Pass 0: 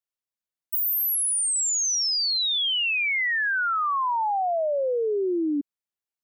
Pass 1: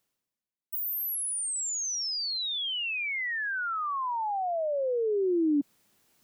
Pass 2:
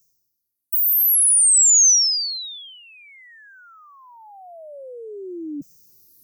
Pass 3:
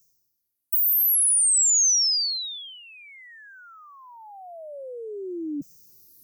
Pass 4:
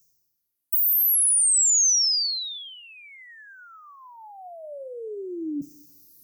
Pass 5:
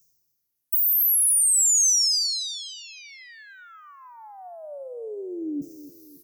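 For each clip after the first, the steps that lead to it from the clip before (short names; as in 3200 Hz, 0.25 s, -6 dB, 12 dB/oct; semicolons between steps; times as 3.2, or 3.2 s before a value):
bell 210 Hz +9.5 dB 2.1 oct; reverse; upward compressor, threshold -35 dBFS; reverse; gain -7.5 dB
moving spectral ripple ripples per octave 0.56, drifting -0.53 Hz, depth 15 dB; EQ curve 170 Hz 0 dB, 570 Hz -12 dB, 1100 Hz -25 dB, 2800 Hz -28 dB, 6100 Hz +6 dB; gain +6.5 dB
compressor 3:1, threshold -20 dBFS, peak gain reduction 6.5 dB
shoebox room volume 650 m³, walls furnished, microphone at 0.35 m
feedback echo 0.279 s, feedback 47%, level -15 dB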